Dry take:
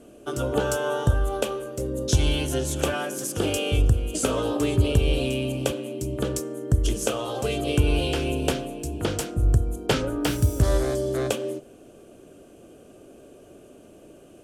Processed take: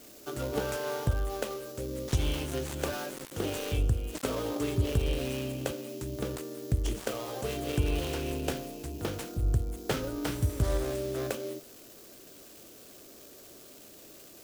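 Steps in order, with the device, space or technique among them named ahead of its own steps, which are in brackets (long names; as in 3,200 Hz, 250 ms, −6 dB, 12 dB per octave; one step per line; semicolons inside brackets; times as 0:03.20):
budget class-D amplifier (gap after every zero crossing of 0.15 ms; spike at every zero crossing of −26 dBFS)
level −7.5 dB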